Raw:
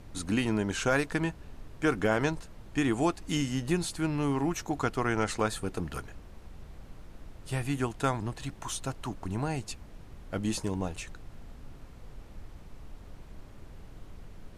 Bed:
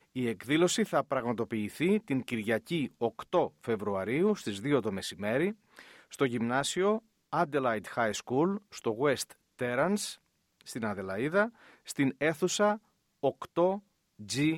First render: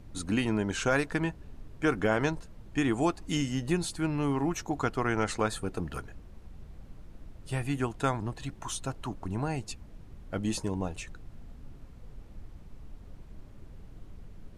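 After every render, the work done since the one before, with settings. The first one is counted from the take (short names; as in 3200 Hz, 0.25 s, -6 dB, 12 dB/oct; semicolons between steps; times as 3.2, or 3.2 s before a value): denoiser 6 dB, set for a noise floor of -49 dBFS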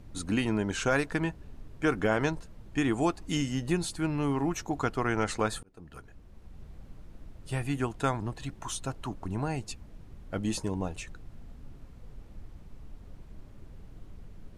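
5.63–6.64 fade in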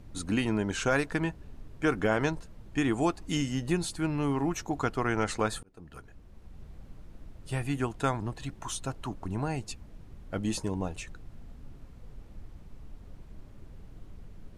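nothing audible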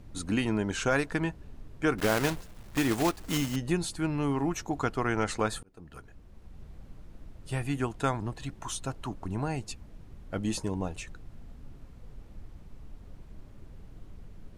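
1.98–3.57 block floating point 3-bit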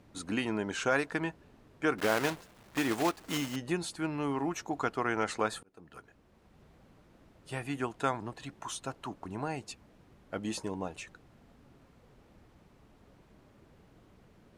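HPF 350 Hz 6 dB/oct; high shelf 4200 Hz -5.5 dB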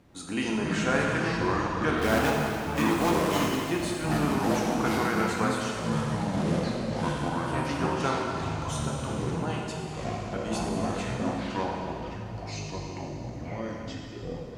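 echoes that change speed 0.187 s, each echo -6 st, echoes 3; plate-style reverb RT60 2.7 s, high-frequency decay 0.95×, DRR -2 dB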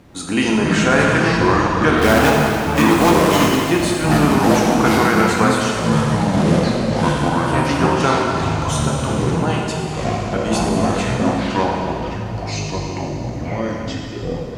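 gain +12 dB; limiter -2 dBFS, peak gain reduction 3 dB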